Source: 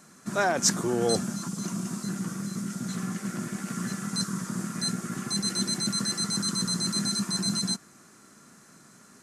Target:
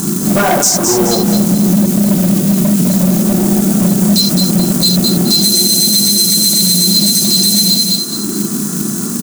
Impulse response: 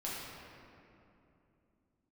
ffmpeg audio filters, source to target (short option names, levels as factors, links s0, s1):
-filter_complex "[0:a]acompressor=mode=upward:threshold=0.0251:ratio=2.5,equalizer=f=2300:w=1.8:g=-13,afwtdn=0.0141,asetnsamples=n=441:p=0,asendcmd='2.5 highpass f 200',highpass=f=45:p=1,acompressor=threshold=0.0158:ratio=16[s0];[1:a]atrim=start_sample=2205,atrim=end_sample=3528[s1];[s0][s1]afir=irnorm=-1:irlink=0,volume=59.6,asoftclip=hard,volume=0.0168,aresample=32000,aresample=44100,acrusher=bits=5:mode=log:mix=0:aa=0.000001,aemphasis=mode=production:type=75kf,aecho=1:1:212|424|636|848:0.398|0.147|0.0545|0.0202,alimiter=level_in=35.5:limit=0.891:release=50:level=0:latency=1,volume=0.891"